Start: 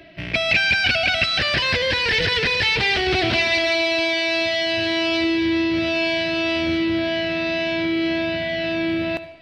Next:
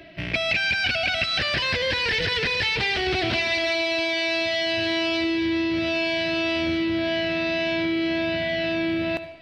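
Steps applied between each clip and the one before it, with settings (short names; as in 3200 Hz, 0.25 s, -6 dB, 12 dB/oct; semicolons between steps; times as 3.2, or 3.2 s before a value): compressor 3:1, threshold -22 dBFS, peak gain reduction 6.5 dB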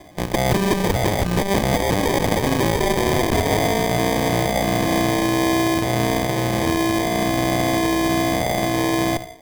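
added harmonics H 3 -18 dB, 4 -19 dB, 6 -15 dB, 7 -34 dB, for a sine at -11 dBFS; sample-and-hold 32×; gain +8 dB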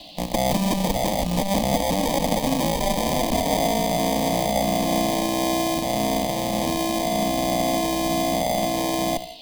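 fixed phaser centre 390 Hz, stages 6; band noise 2700–4700 Hz -45 dBFS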